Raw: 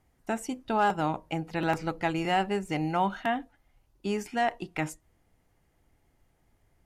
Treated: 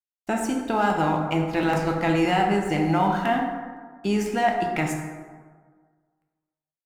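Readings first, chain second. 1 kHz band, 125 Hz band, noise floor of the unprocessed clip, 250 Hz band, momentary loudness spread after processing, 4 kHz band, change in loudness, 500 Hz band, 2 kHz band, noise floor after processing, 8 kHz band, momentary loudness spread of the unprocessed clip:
+5.5 dB, +8.0 dB, -70 dBFS, +8.0 dB, 11 LU, +4.5 dB, +6.0 dB, +6.5 dB, +5.5 dB, under -85 dBFS, +6.5 dB, 8 LU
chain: in parallel at -1.5 dB: compressor with a negative ratio -31 dBFS, ratio -1; on the sum: crossover distortion -48.5 dBFS; plate-style reverb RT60 1.6 s, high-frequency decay 0.45×, DRR 1 dB

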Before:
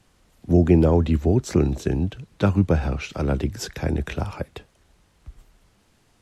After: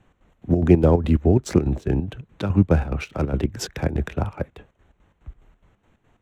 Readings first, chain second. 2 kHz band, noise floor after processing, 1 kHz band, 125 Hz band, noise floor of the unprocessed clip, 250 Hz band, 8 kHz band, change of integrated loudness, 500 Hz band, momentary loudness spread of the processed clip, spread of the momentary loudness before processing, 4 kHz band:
-0.5 dB, -68 dBFS, +0.5 dB, +0.5 dB, -62 dBFS, +0.5 dB, 0.0 dB, +0.5 dB, +0.5 dB, 13 LU, 13 LU, -0.5 dB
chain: local Wiener filter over 9 samples; square tremolo 4.8 Hz, depth 65%, duty 60%; trim +2.5 dB

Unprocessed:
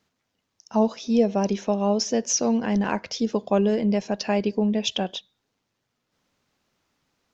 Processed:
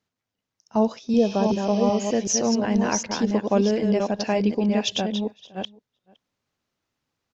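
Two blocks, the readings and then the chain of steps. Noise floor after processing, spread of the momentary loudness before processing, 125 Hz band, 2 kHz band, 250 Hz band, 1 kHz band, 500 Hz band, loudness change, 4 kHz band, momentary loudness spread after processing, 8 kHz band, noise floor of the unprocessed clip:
-85 dBFS, 5 LU, +1.5 dB, +1.5 dB, +1.5 dB, +1.5 dB, +1.0 dB, +1.0 dB, +0.5 dB, 8 LU, no reading, -78 dBFS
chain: chunks repeated in reverse 379 ms, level -4.5 dB; gate -32 dBFS, range -9 dB; spectral replace 1.20–2.13 s, 1.9–6.3 kHz both; peaking EQ 110 Hz +7.5 dB 0.25 oct; echo from a far wall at 88 m, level -25 dB

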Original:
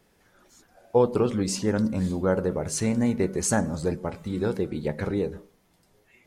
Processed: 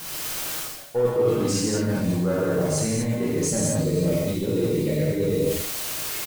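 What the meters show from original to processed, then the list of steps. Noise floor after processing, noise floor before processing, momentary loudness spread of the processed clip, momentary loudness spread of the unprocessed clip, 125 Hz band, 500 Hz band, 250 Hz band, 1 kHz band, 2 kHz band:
-35 dBFS, -64 dBFS, 5 LU, 7 LU, +4.5 dB, +3.0 dB, +1.5 dB, -2.0 dB, +2.0 dB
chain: in parallel at -10 dB: word length cut 6-bit, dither triangular; on the sum: time-frequency box 3.27–5.55 s, 640–1800 Hz -13 dB; waveshaping leveller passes 1; gated-style reverb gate 270 ms flat, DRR -7 dB; reverse; compression 6:1, threshold -28 dBFS, peak gain reduction 23 dB; reverse; comb 6.4 ms, depth 38%; trim +6 dB

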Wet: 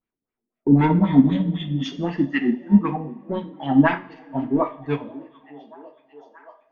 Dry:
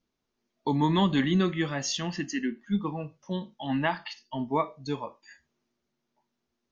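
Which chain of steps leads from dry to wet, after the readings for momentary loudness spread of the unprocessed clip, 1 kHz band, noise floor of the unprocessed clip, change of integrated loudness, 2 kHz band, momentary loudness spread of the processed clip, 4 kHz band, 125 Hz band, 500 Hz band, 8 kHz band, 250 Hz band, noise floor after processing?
12 LU, +4.5 dB, -82 dBFS, +8.0 dB, +5.0 dB, 14 LU, -3.0 dB, +8.0 dB, +5.5 dB, no reading, +10.0 dB, under -85 dBFS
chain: spectral replace 0.94–1.90 s, 310–3700 Hz both; waveshaping leveller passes 2; LFO low-pass sine 3.9 Hz 260–2400 Hz; on a send: repeats whose band climbs or falls 625 ms, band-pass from 290 Hz, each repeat 0.7 oct, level -11 dB; on the sum: two-slope reverb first 0.4 s, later 2.1 s, from -19 dB, DRR 4 dB; upward expansion 1.5:1, over -28 dBFS; trim +3 dB

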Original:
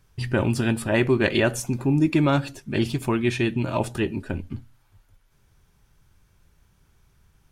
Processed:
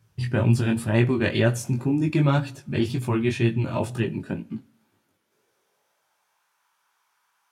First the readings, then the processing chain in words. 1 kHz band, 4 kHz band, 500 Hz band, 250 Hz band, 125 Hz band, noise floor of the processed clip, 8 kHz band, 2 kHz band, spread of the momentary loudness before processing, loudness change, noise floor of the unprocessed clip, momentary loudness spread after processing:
-2.5 dB, -3.0 dB, -2.0 dB, -1.0 dB, +3.0 dB, -72 dBFS, -3.0 dB, -3.0 dB, 10 LU, -0.5 dB, -62 dBFS, 10 LU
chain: chorus 2 Hz, delay 17 ms, depth 4.8 ms; high-pass sweep 110 Hz -> 980 Hz, 3.87–6.53 s; two-slope reverb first 0.45 s, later 1.9 s, from -18 dB, DRR 19 dB

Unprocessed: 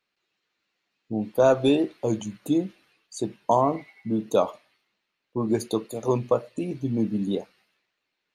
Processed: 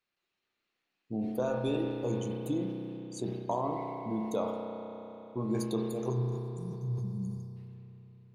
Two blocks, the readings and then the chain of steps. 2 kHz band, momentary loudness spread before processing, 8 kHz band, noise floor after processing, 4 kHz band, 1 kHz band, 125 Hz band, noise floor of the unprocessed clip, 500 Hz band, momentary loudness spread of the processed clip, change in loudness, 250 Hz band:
-10.0 dB, 12 LU, -8.5 dB, -85 dBFS, -10.5 dB, -10.5 dB, -1.5 dB, -81 dBFS, -10.0 dB, 12 LU, -9.0 dB, -8.0 dB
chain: spectral selection erased 6.10–7.56 s, 210–4400 Hz; bass shelf 120 Hz +5 dB; compression 4:1, threshold -22 dBFS, peak gain reduction 8 dB; spring tank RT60 3.6 s, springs 32 ms, chirp 65 ms, DRR 1 dB; decay stretcher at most 44 dB/s; trim -8 dB

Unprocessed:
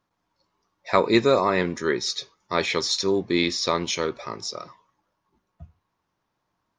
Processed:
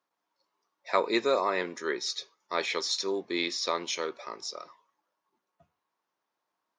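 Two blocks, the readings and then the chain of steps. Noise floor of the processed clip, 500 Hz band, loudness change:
-85 dBFS, -7.0 dB, -6.5 dB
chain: high-pass 370 Hz 12 dB/octave; trim -5.5 dB

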